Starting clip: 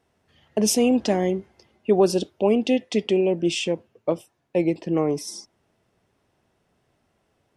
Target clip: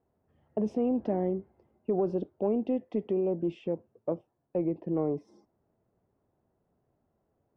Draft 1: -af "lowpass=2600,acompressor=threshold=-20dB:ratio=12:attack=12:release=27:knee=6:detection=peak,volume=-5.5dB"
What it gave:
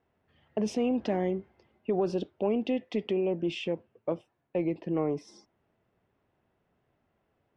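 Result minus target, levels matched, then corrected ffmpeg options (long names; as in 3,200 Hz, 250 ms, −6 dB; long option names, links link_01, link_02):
2,000 Hz band +14.0 dB
-af "lowpass=870,acompressor=threshold=-20dB:ratio=12:attack=12:release=27:knee=6:detection=peak,volume=-5.5dB"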